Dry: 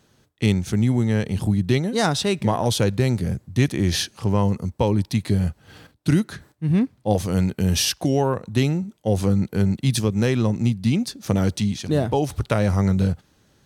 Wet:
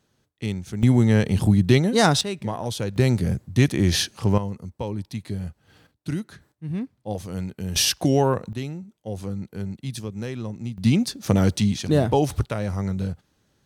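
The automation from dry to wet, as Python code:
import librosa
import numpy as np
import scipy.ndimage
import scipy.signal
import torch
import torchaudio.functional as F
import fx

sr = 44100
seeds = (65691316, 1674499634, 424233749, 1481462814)

y = fx.gain(x, sr, db=fx.steps((0.0, -8.5), (0.83, 3.0), (2.21, -7.5), (2.96, 1.0), (4.38, -9.5), (7.76, 1.0), (8.53, -11.0), (10.78, 1.5), (12.45, -7.0)))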